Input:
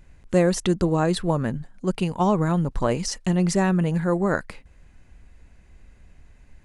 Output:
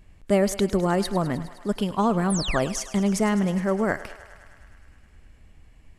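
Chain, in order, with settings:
sound drawn into the spectrogram fall, 0:02.55–0:02.88, 1,200–9,900 Hz −30 dBFS
feedback echo with a high-pass in the loop 115 ms, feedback 79%, high-pass 400 Hz, level −15 dB
speed change +11%
level −1.5 dB

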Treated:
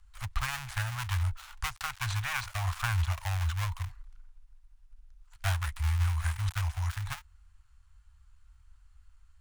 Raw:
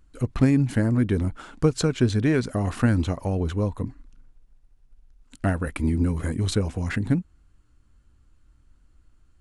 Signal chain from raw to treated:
gap after every zero crossing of 0.27 ms
inverse Chebyshev band-stop filter 170–450 Hz, stop band 50 dB

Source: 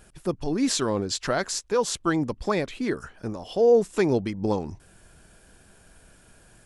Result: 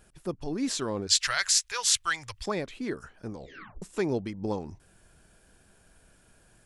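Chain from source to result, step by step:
0:01.07–0:02.46: drawn EQ curve 110 Hz 0 dB, 220 Hz −29 dB, 2,000 Hz +13 dB
0:03.31: tape stop 0.51 s
level −6 dB

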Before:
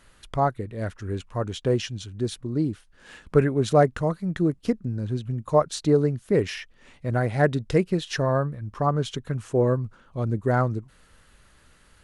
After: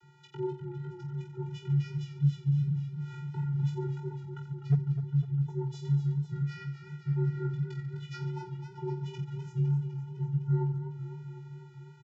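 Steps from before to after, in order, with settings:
parametric band 430 Hz −4.5 dB 1.2 octaves
downward compressor 3 to 1, threshold −39 dBFS, peak gain reduction 18 dB
on a send: reverse bouncing-ball delay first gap 20 ms, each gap 1.4×, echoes 5
on the sum: channel vocoder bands 32, square 258 Hz
frequency shifter −400 Hz
hard clipping −23.5 dBFS, distortion −31 dB
feedback echo with a swinging delay time 253 ms, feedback 71%, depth 64 cents, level −11 dB
level +5.5 dB

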